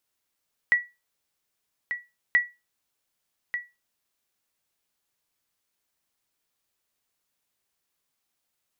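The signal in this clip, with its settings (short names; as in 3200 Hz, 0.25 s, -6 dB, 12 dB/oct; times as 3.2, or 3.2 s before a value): sonar ping 1940 Hz, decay 0.24 s, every 1.63 s, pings 2, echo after 1.19 s, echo -10 dB -12 dBFS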